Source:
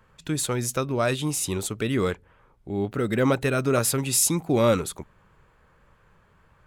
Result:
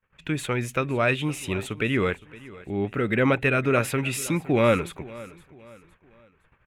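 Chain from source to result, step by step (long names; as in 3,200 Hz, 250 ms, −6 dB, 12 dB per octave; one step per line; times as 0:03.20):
noise gate −57 dBFS, range −29 dB
drawn EQ curve 1,100 Hz 0 dB, 2,500 Hz +9 dB, 4,700 Hz −11 dB
repeating echo 513 ms, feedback 38%, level −19.5 dB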